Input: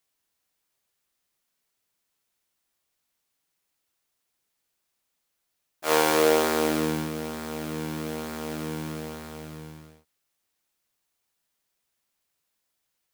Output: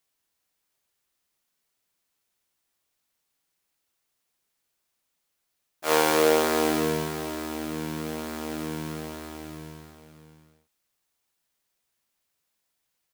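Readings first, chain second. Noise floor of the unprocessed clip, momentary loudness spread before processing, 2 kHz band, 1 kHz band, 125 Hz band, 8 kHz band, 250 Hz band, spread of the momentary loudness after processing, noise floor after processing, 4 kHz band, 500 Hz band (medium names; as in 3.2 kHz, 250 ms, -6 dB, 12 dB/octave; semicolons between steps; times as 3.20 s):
-79 dBFS, 20 LU, 0.0 dB, +0.5 dB, -1.0 dB, +0.5 dB, 0.0 dB, 19 LU, -79 dBFS, +0.5 dB, +0.5 dB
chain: delay 633 ms -11 dB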